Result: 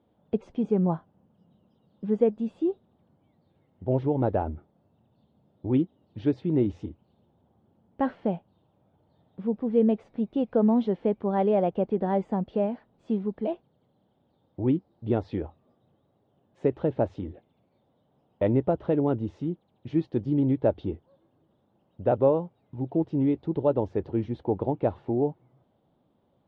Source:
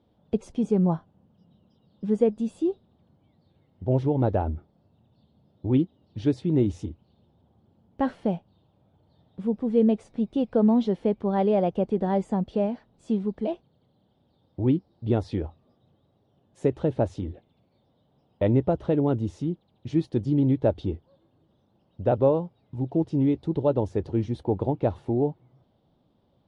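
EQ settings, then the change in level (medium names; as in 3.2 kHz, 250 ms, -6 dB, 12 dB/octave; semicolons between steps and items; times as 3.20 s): low-pass 2.7 kHz 12 dB/octave; bass shelf 120 Hz -8.5 dB; 0.0 dB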